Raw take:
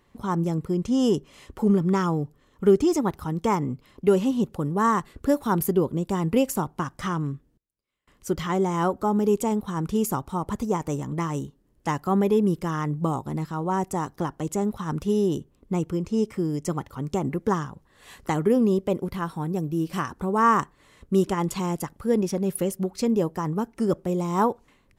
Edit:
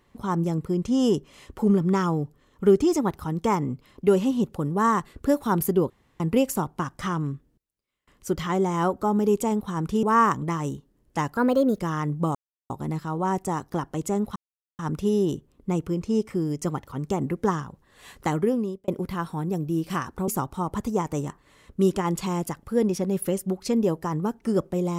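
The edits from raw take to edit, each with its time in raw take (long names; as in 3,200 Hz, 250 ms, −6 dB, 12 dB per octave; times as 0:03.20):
0:05.90–0:06.20: fill with room tone
0:10.03–0:11.04: swap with 0:20.31–0:20.62
0:12.07–0:12.61: play speed 126%
0:13.16: splice in silence 0.35 s
0:14.82: splice in silence 0.43 s
0:18.37–0:18.91: fade out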